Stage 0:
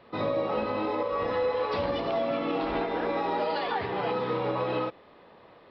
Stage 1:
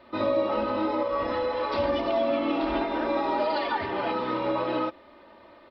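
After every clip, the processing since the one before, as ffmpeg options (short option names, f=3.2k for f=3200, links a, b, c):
-af "aecho=1:1:3.3:0.8"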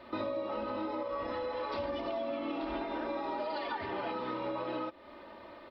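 -af "acompressor=threshold=-37dB:ratio=4,volume=1.5dB"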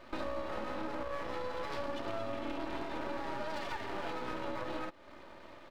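-af "aeval=exprs='max(val(0),0)':c=same,volume=1.5dB"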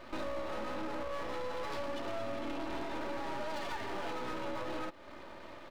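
-af "aeval=exprs='(tanh(25.1*val(0)+0.65)-tanh(0.65))/25.1':c=same,volume=7.5dB"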